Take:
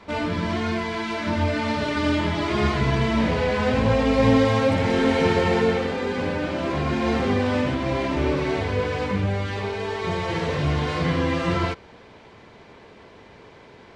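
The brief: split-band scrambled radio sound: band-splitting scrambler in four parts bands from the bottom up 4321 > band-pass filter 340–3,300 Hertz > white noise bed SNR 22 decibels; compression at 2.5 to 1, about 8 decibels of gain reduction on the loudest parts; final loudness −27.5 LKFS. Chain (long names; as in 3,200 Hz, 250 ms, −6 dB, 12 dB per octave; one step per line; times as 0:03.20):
downward compressor 2.5 to 1, threshold −26 dBFS
band-splitting scrambler in four parts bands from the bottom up 4321
band-pass filter 340–3,300 Hz
white noise bed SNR 22 dB
level +3.5 dB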